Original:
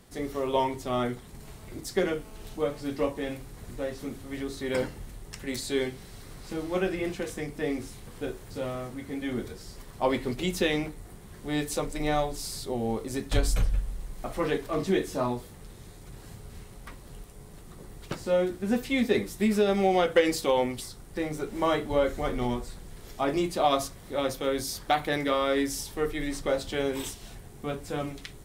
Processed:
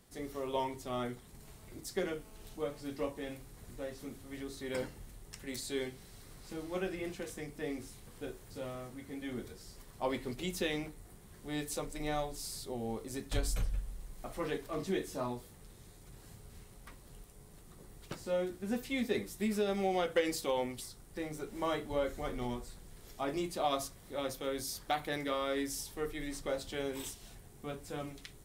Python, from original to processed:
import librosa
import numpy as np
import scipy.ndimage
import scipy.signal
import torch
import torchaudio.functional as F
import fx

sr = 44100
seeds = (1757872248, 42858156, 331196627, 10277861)

y = fx.high_shelf(x, sr, hz=5400.0, db=5.0)
y = y * librosa.db_to_amplitude(-9.0)